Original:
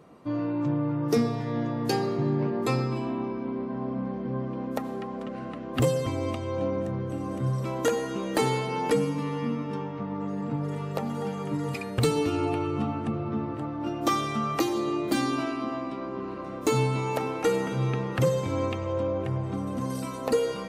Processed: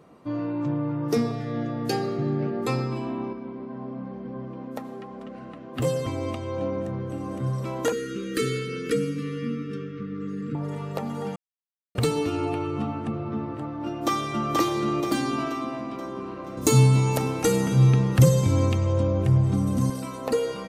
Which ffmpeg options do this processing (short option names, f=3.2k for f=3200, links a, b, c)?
-filter_complex "[0:a]asettb=1/sr,asplit=3[a][b][c];[a]atrim=end=1.314[d];[b]atrim=start=1.31:end=2.67,asetpts=PTS-STARTPTS,afade=t=in:d=0.004:c=qsin,afade=t=out:st=1.356:d=0.004:c=qsin,asuperstop=centerf=1000:order=20:qfactor=4.5[e];[c]atrim=start=2.666[f];[d][e]acrossfade=d=0.004:c1=hsin:c2=qsin[g];[g][f]acrossfade=d=0.004:c1=qsin:c2=hsin,asettb=1/sr,asplit=3[h][i][j];[h]atrim=end=3.334[k];[i]atrim=start=3.33:end=5.85,asetpts=PTS-STARTPTS,afade=t=in:d=0.004:c=qsin,afade=t=out:st=2.516:d=0.004:c=qsin,flanger=delay=3.8:depth=5.1:regen=-62:speed=1:shape=triangular[l];[j]atrim=start=5.846[m];[k][l]acrossfade=d=0.004:c1=hsin:c2=qsin[n];[n][m]acrossfade=d=0.004:c1=qsin:c2=hsin,asettb=1/sr,asplit=3[o][p][q];[o]atrim=end=7.924[r];[p]atrim=start=7.92:end=10.55,asetpts=PTS-STARTPTS,afade=t=in:d=0.004:c=qsin,afade=t=out:st=2.626:d=0.004:c=qsin,asuperstop=centerf=780:order=12:qfactor=1.1[s];[q]atrim=start=10.546[t];[r][s]acrossfade=d=0.004:c1=hsin:c2=qsin[u];[u][t]acrossfade=d=0.004:c1=qsin:c2=hsin,asplit=2[v][w];[w]afade=t=in:st=13.85:d=0.01,afade=t=out:st=14.52:d=0.01,aecho=0:1:480|960|1440|1920|2400|2880|3360:0.841395|0.420698|0.210349|0.105174|0.0525872|0.0262936|0.0131468[x];[v][x]amix=inputs=2:normalize=0,asettb=1/sr,asplit=3[y][z][aa];[y]atrim=end=16.574[ab];[z]atrim=start=16.57:end=19.9,asetpts=PTS-STARTPTS,afade=t=in:d=0.004:c=qsin,afade=t=out:st=3.326:d=0.004:c=qsin,bass=f=250:g=12,treble=f=4k:g=12[ac];[aa]atrim=start=19.896[ad];[ab][ac]acrossfade=d=0.004:c1=hsin:c2=qsin[ae];[ae][ad]acrossfade=d=0.004:c1=qsin:c2=hsin,asplit=3[af][ag][ah];[af]atrim=end=11.36,asetpts=PTS-STARTPTS,afade=t=out:st=11.356:d=0.004:c=hsin[ai];[ag]atrim=start=11.36:end=11.95,asetpts=PTS-STARTPTS,volume=0[aj];[ah]atrim=start=11.95,asetpts=PTS-STARTPTS,afade=t=in:d=0.004:c=hsin[ak];[ai][aj][ak]concat=n=3:v=0:a=1"